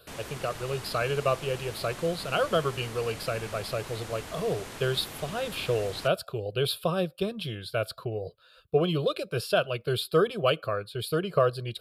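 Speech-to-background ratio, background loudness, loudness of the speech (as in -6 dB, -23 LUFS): 11.5 dB, -41.0 LUFS, -29.5 LUFS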